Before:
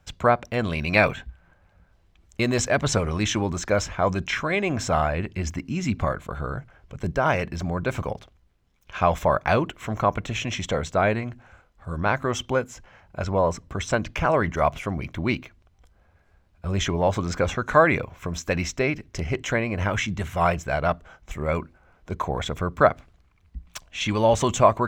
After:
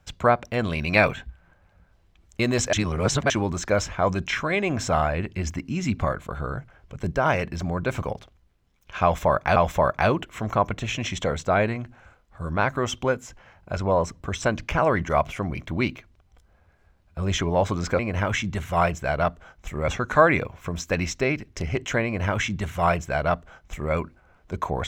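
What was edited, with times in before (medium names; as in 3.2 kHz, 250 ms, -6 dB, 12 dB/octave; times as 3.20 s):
2.73–3.30 s: reverse
9.03–9.56 s: loop, 2 plays
19.63–21.52 s: copy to 17.46 s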